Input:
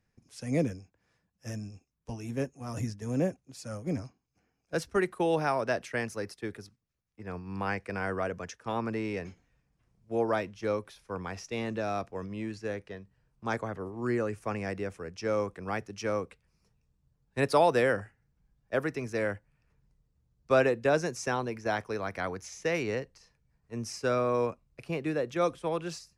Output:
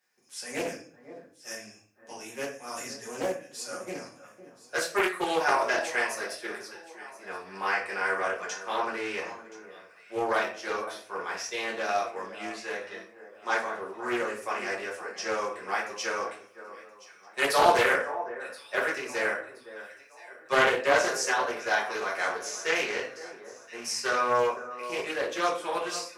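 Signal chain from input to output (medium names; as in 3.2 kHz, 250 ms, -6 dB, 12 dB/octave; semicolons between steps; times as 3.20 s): high-pass 770 Hz 12 dB/octave; treble shelf 6.2 kHz +7 dB; on a send: echo whose repeats swap between lows and highs 512 ms, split 1.6 kHz, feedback 57%, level -13 dB; on the sum: simulated room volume 44 m³, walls mixed, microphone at 1.3 m; loudspeaker Doppler distortion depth 0.3 ms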